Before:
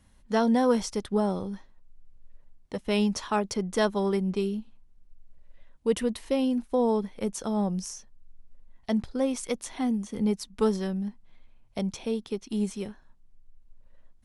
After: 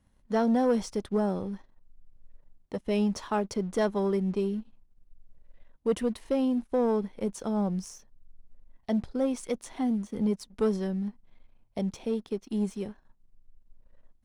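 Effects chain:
tilt shelving filter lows +4 dB, about 1,200 Hz
leveller curve on the samples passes 1
low-shelf EQ 220 Hz −3.5 dB
level −6 dB

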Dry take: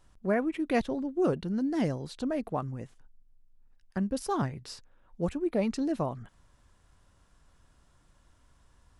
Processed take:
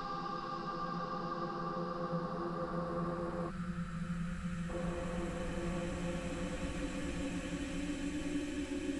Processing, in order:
echo through a band-pass that steps 413 ms, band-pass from 2,500 Hz, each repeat −0.7 octaves, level −0.5 dB
reversed playback
downward compressor, threshold −41 dBFS, peak gain reduction 18 dB
reversed playback
brickwall limiter −40.5 dBFS, peak gain reduction 10 dB
extreme stretch with random phases 44×, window 0.25 s, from 0:05.15
gain on a spectral selection 0:03.50–0:04.70, 230–1,200 Hz −17 dB
level +10.5 dB

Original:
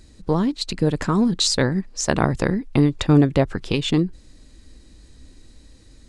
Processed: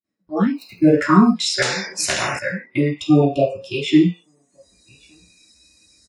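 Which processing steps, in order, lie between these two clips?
0:00.52–0:01.01: running median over 25 samples
0:02.91–0:03.81: elliptic band-stop filter 1,200–2,600 Hz
slap from a distant wall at 200 metres, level −24 dB
automatic gain control gain up to 14 dB
noise gate with hold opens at −38 dBFS
convolution reverb RT60 0.60 s, pre-delay 3 ms, DRR −8 dB
noise reduction from a noise print of the clip's start 26 dB
high-pass filter 92 Hz 12 dB per octave
0:01.62–0:02.39: every bin compressed towards the loudest bin 4 to 1
level −9.5 dB

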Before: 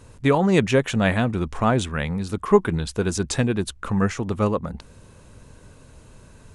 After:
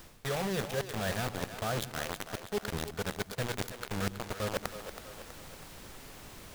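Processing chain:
phaser with its sweep stopped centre 1,500 Hz, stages 8
bit reduction 4 bits
background noise pink −53 dBFS
reversed playback
downward compressor 6 to 1, threshold −36 dBFS, peak gain reduction 20.5 dB
reversed playback
echo with a time of its own for lows and highs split 320 Hz, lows 101 ms, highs 324 ms, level −10 dB
level +4 dB

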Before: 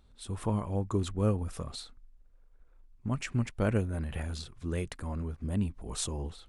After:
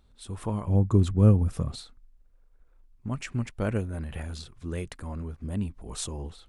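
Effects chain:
0:00.67–0:01.81: parametric band 120 Hz +11.5 dB 2.9 octaves

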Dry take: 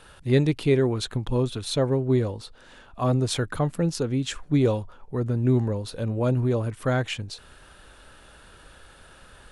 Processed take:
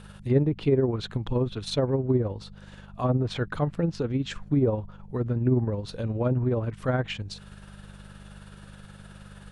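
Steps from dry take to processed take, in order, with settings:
hum with harmonics 50 Hz, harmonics 4, −45 dBFS 0 dB per octave
amplitude tremolo 19 Hz, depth 42%
treble cut that deepens with the level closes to 1,000 Hz, closed at −18.5 dBFS

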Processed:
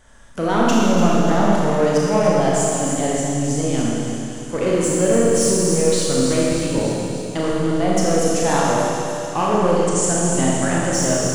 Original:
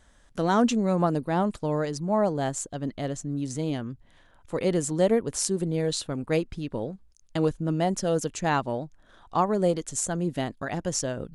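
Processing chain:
parametric band 4,000 Hz −6.5 dB 0.24 octaves
mains-hum notches 50/100/150/200/250/300 Hz
in parallel at +1 dB: brickwall limiter −19 dBFS, peak gain reduction 9.5 dB
on the sum: soft clipping −16 dBFS, distortion −14 dB
0:09.54–0:10.04: linear-phase brick-wall low-pass 9,900 Hz
delay with a high-pass on its return 295 ms, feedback 65%, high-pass 3,300 Hz, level −8 dB
four-comb reverb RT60 2.8 s, combs from 27 ms, DRR −5.5 dB

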